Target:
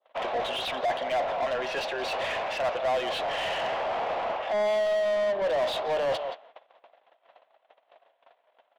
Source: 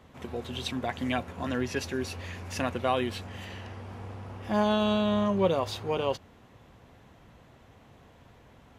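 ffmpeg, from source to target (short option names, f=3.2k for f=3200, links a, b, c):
-filter_complex "[0:a]agate=range=-38dB:threshold=-50dB:ratio=16:detection=peak,adynamicequalizer=threshold=0.00447:dfrequency=2100:dqfactor=0.97:tfrequency=2100:tqfactor=0.97:attack=5:release=100:ratio=0.375:range=3:mode=cutabove:tftype=bell,areverse,acompressor=threshold=-35dB:ratio=6,areverse,lowpass=f=3.4k:t=q:w=2.3,asplit=2[a][b];[b]asoftclip=type=tanh:threshold=-37dB,volume=-8dB[c];[a][c]amix=inputs=2:normalize=0,highpass=f=630:t=q:w=4.9,asplit=2[d][e];[e]adelay=174.9,volume=-17dB,highshelf=f=4k:g=-3.94[f];[d][f]amix=inputs=2:normalize=0,asplit=2[g][h];[h]highpass=f=720:p=1,volume=23dB,asoftclip=type=tanh:threshold=-20.5dB[i];[g][i]amix=inputs=2:normalize=0,lowpass=f=2k:p=1,volume=-6dB"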